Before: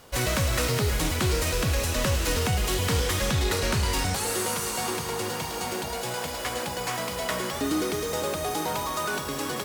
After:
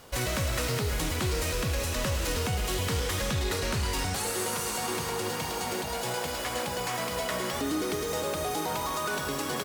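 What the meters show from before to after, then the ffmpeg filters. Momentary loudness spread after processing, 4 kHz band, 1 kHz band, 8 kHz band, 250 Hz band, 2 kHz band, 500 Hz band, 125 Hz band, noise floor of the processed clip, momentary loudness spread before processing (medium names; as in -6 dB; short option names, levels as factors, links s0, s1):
2 LU, -3.0 dB, -2.0 dB, -3.0 dB, -3.0 dB, -3.0 dB, -2.5 dB, -4.0 dB, -34 dBFS, 5 LU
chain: -filter_complex "[0:a]asplit=2[s0][s1];[s1]adelay=130,highpass=300,lowpass=3400,asoftclip=type=hard:threshold=0.0501,volume=0.355[s2];[s0][s2]amix=inputs=2:normalize=0,alimiter=limit=0.0841:level=0:latency=1:release=106"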